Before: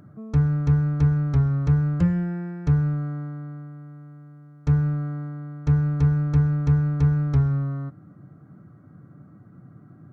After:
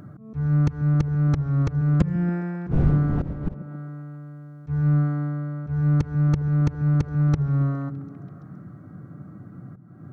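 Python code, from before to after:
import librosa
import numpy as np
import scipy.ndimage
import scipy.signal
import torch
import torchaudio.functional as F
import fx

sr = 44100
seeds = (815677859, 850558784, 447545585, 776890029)

y = fx.dmg_wind(x, sr, seeds[0], corner_hz=160.0, level_db=-22.0, at=(2.7, 3.53), fade=0.02)
y = fx.auto_swell(y, sr, attack_ms=311.0)
y = fx.echo_stepped(y, sr, ms=135, hz=170.0, octaves=0.7, feedback_pct=70, wet_db=-7.5)
y = fx.doppler_dist(y, sr, depth_ms=0.12)
y = y * librosa.db_to_amplitude(6.0)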